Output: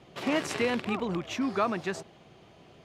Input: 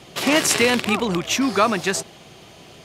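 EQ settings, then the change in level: LPF 1700 Hz 6 dB/oct; -8.5 dB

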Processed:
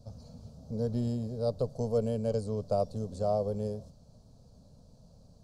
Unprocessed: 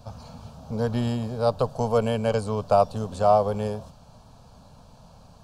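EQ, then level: band shelf 1600 Hz -15.5 dB 2.4 oct; high shelf 8100 Hz -8 dB; -5.5 dB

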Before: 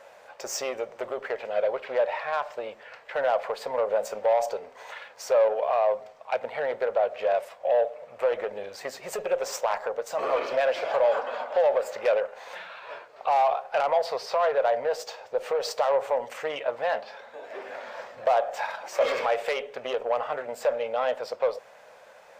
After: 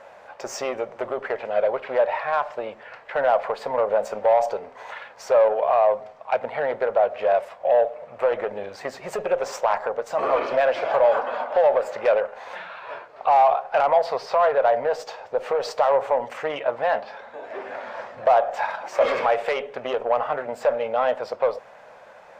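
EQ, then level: bell 490 Hz -5 dB 0.76 oct; high shelf 2100 Hz -11 dB; high shelf 11000 Hz -7.5 dB; +8.5 dB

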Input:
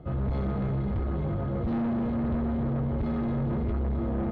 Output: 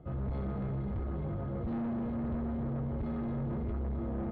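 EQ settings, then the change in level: LPF 2900 Hz 6 dB/oct; -6.5 dB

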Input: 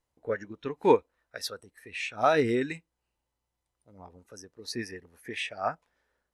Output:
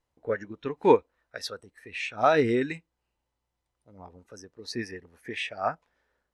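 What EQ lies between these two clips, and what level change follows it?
Bessel low-pass 9800 Hz; high shelf 6700 Hz -6 dB; +2.0 dB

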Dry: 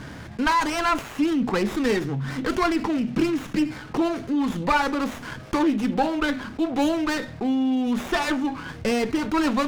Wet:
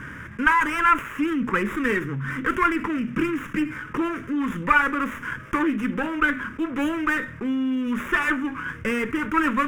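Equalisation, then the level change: dynamic EQ 5600 Hz, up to -4 dB, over -47 dBFS, Q 2.6; bell 1300 Hz +10 dB 2.1 oct; fixed phaser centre 1800 Hz, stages 4; -1.5 dB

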